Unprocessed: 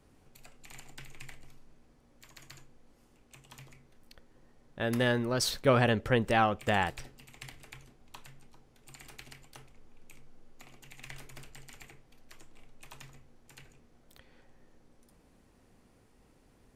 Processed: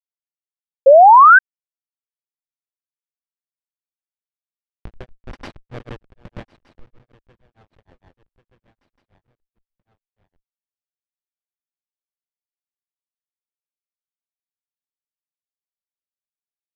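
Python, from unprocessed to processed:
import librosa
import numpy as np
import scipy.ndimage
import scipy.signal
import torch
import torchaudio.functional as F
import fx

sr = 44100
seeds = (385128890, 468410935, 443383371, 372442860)

p1 = fx.self_delay(x, sr, depth_ms=0.11)
p2 = fx.high_shelf(p1, sr, hz=2300.0, db=9.0)
p3 = fx.schmitt(p2, sr, flips_db=-21.0)
p4 = fx.over_compress(p3, sr, threshold_db=-42.0, ratio=-0.5)
p5 = p3 + F.gain(torch.from_numpy(p4), 1.5).numpy()
p6 = scipy.signal.sosfilt(scipy.signal.butter(2, 3000.0, 'lowpass', fs=sr, output='sos'), p5)
p7 = p6 + fx.echo_feedback(p6, sr, ms=1160, feedback_pct=48, wet_db=-21, dry=0)
p8 = fx.granulator(p7, sr, seeds[0], grain_ms=144.0, per_s=6.5, spray_ms=100.0, spread_st=0)
p9 = fx.spec_paint(p8, sr, seeds[1], shape='rise', start_s=0.86, length_s=0.53, low_hz=520.0, high_hz=1600.0, level_db=-10.0)
y = F.gain(torch.from_numpy(p9), 4.0).numpy()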